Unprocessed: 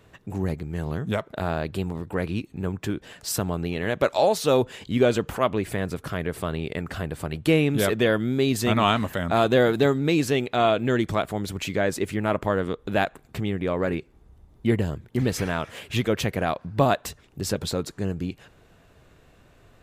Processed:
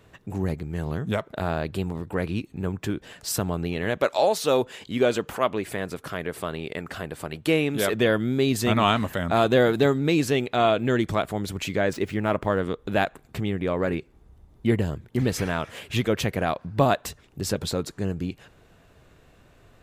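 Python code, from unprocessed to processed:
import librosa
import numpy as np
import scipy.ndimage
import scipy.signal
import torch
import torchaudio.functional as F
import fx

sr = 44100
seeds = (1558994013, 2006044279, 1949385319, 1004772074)

y = fx.low_shelf(x, sr, hz=160.0, db=-11.5, at=(3.97, 7.94))
y = fx.median_filter(y, sr, points=5, at=(11.93, 12.6))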